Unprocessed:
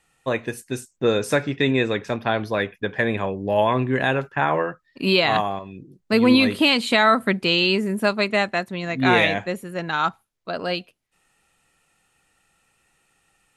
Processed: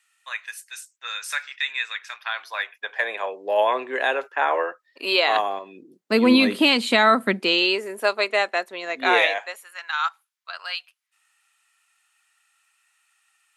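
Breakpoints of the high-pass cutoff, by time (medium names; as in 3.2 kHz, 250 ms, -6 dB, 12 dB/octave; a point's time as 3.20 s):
high-pass 24 dB/octave
2.14 s 1.3 kHz
3.48 s 430 Hz
5.14 s 430 Hz
6.36 s 190 Hz
7.27 s 190 Hz
7.81 s 400 Hz
9.15 s 400 Hz
9.75 s 1.1 kHz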